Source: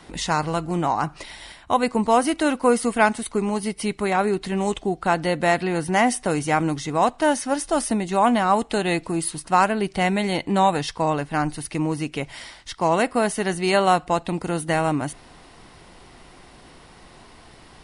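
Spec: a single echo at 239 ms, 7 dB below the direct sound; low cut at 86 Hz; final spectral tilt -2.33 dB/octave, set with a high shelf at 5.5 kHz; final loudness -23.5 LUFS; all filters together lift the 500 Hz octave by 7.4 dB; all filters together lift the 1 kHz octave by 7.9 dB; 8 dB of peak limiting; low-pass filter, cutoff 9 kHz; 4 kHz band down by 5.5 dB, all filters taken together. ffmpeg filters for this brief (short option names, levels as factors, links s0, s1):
-af "highpass=86,lowpass=9000,equalizer=f=500:t=o:g=7,equalizer=f=1000:t=o:g=8,equalizer=f=4000:t=o:g=-6.5,highshelf=f=5500:g=-4.5,alimiter=limit=0.562:level=0:latency=1,aecho=1:1:239:0.447,volume=0.501"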